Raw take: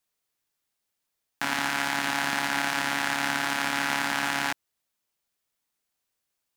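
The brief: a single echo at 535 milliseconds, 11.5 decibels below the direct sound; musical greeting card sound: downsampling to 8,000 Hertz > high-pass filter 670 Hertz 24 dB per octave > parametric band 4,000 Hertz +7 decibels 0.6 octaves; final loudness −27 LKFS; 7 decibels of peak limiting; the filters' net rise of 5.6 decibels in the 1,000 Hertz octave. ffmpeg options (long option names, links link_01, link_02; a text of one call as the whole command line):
ffmpeg -i in.wav -af "equalizer=frequency=1000:width_type=o:gain=7.5,alimiter=limit=-14dB:level=0:latency=1,aecho=1:1:535:0.266,aresample=8000,aresample=44100,highpass=frequency=670:width=0.5412,highpass=frequency=670:width=1.3066,equalizer=frequency=4000:width_type=o:width=0.6:gain=7,volume=1dB" out.wav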